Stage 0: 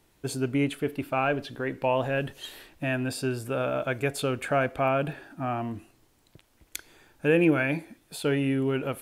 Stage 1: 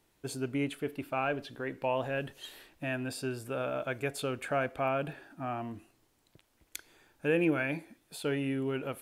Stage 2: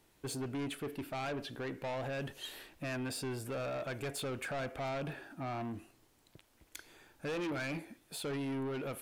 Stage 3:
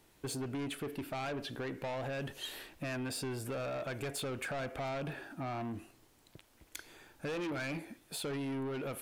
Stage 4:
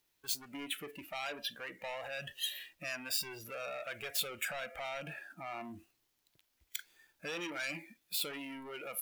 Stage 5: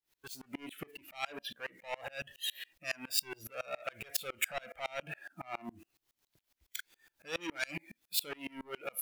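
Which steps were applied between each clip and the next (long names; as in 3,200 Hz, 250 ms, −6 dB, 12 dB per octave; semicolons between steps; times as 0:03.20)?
low-shelf EQ 170 Hz −4 dB; level −5.5 dB
in parallel at −1 dB: brickwall limiter −28.5 dBFS, peak gain reduction 11 dB; on the sum: soft clipping −31.5 dBFS, distortion −8 dB; level −3 dB
downward compressor, threshold −39 dBFS, peak gain reduction 3.5 dB; level +3 dB
running median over 5 samples; noise reduction from a noise print of the clip's start 15 dB; first-order pre-emphasis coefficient 0.9; level +13.5 dB
tremolo with a ramp in dB swelling 7.2 Hz, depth 30 dB; level +8.5 dB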